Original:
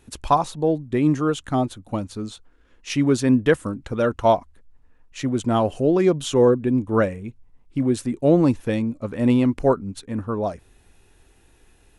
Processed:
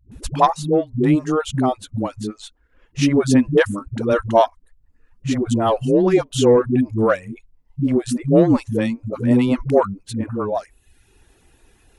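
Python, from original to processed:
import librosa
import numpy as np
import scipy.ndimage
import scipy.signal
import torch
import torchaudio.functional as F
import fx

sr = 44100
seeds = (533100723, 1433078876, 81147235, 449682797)

y = fx.cheby_harmonics(x, sr, harmonics=(2, 4), levels_db=(-21, -23), full_scale_db=-4.5)
y = fx.dereverb_blind(y, sr, rt60_s=0.69)
y = fx.dispersion(y, sr, late='highs', ms=117.0, hz=300.0)
y = y * librosa.db_to_amplitude(3.5)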